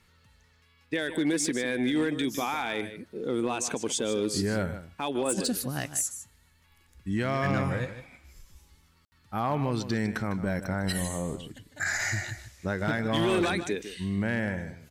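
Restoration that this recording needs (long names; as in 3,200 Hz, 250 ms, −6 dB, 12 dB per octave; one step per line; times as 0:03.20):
clipped peaks rebuilt −20 dBFS
ambience match 0:09.05–0:09.12
echo removal 153 ms −12 dB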